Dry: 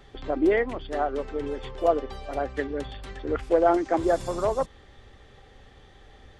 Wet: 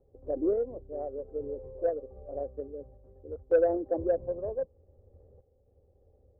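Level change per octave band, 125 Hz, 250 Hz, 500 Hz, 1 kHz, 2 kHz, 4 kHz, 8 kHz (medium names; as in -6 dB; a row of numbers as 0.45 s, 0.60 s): -8.5 dB, -8.5 dB, -4.5 dB, -15.5 dB, -15.5 dB, under -35 dB, no reading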